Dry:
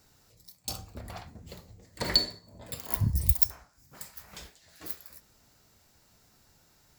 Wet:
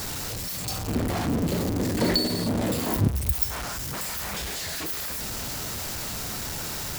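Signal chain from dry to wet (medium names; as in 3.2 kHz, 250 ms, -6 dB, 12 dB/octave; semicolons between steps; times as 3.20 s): jump at every zero crossing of -22.5 dBFS; 0.88–3.08 s: peaking EQ 270 Hz +13.5 dB 1.9 oct; trim -4 dB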